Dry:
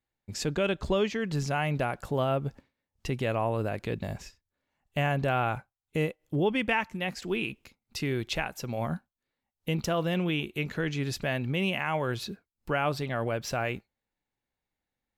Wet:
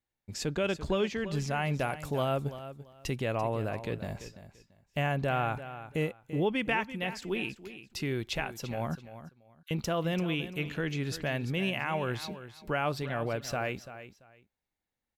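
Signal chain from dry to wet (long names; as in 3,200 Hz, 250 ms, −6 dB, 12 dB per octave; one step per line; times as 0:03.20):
0:01.74–0:03.16: high-shelf EQ 4,000 Hz +7.5 dB
0:08.95–0:09.71: Chebyshev high-pass with heavy ripple 1,100 Hz, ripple 9 dB
repeating echo 339 ms, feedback 21%, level −13 dB
level −2.5 dB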